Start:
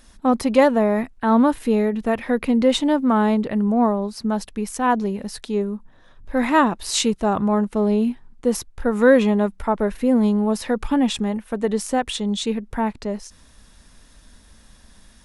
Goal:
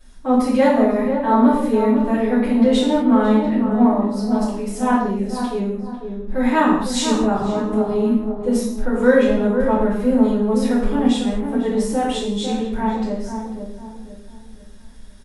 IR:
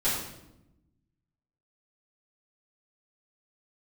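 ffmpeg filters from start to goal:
-filter_complex "[0:a]asplit=2[link_01][link_02];[link_02]adelay=498,lowpass=frequency=1000:poles=1,volume=-6dB,asplit=2[link_03][link_04];[link_04]adelay=498,lowpass=frequency=1000:poles=1,volume=0.41,asplit=2[link_05][link_06];[link_06]adelay=498,lowpass=frequency=1000:poles=1,volume=0.41,asplit=2[link_07][link_08];[link_08]adelay=498,lowpass=frequency=1000:poles=1,volume=0.41,asplit=2[link_09][link_10];[link_10]adelay=498,lowpass=frequency=1000:poles=1,volume=0.41[link_11];[link_01][link_03][link_05][link_07][link_09][link_11]amix=inputs=6:normalize=0[link_12];[1:a]atrim=start_sample=2205,afade=type=out:start_time=0.3:duration=0.01,atrim=end_sample=13671[link_13];[link_12][link_13]afir=irnorm=-1:irlink=0,volume=-11dB"

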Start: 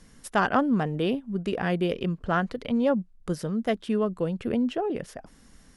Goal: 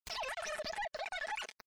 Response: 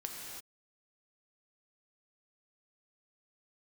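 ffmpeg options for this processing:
-filter_complex "[0:a]equalizer=frequency=370:width=1.3:gain=-11,aphaser=in_gain=1:out_gain=1:delay=2.1:decay=0.46:speed=0.35:type=triangular,equalizer=frequency=3400:width=1.3:gain=-9.5,aeval=exprs='val(0)*gte(abs(val(0)),0.0133)':channel_layout=same,asplit=2[link_01][link_02];[link_02]highpass=frequency=720:poles=1,volume=28dB,asoftclip=type=tanh:threshold=-13dB[link_03];[link_01][link_03]amix=inputs=2:normalize=0,lowpass=frequency=1100:poles=1,volume=-6dB,asplit=2[link_04][link_05];[link_05]adelay=16,volume=-6dB[link_06];[link_04][link_06]amix=inputs=2:normalize=0,acompressor=threshold=-45dB:ratio=6,asetrate=153027,aresample=44100,afftdn=noise_reduction=16:noise_floor=-62,alimiter=level_in=19dB:limit=-24dB:level=0:latency=1:release=45,volume=-19dB,volume=10dB"

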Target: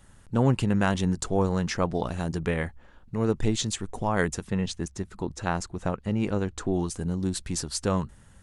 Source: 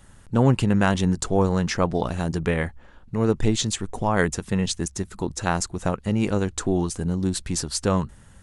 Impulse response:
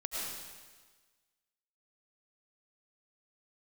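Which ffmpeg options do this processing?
-filter_complex "[0:a]asettb=1/sr,asplit=3[link_01][link_02][link_03];[link_01]atrim=end=4.474[link_04];[link_02]atrim=start=4.47:end=6.74,asetpts=PTS-STARTPTS,afade=type=in:duration=0.004:curve=qsin,afade=type=out:start_time=2.266:duration=0.004:curve=qsin,lowpass=frequency=3700:poles=1[link_05];[link_03]atrim=start=6.736[link_06];[link_04][link_05]acrossfade=duration=0.004:curve1=hsin:curve2=qsin[link_07];[link_07][link_06]acrossfade=duration=0.004:curve1=qsin:curve2=hsin,volume=-4dB"

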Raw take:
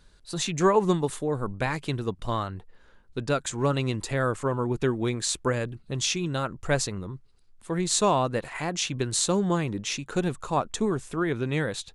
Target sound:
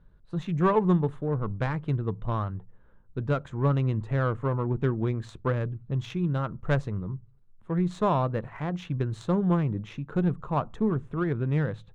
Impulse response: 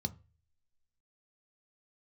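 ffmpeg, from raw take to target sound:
-filter_complex "[0:a]aexciter=amount=2.7:drive=5.1:freq=9600,adynamicsmooth=sensitivity=0.5:basefreq=1200,asplit=2[link_01][link_02];[1:a]atrim=start_sample=2205,afade=type=out:start_time=0.31:duration=0.01,atrim=end_sample=14112,highshelf=frequency=7200:gain=7.5[link_03];[link_02][link_03]afir=irnorm=-1:irlink=0,volume=-14dB[link_04];[link_01][link_04]amix=inputs=2:normalize=0"

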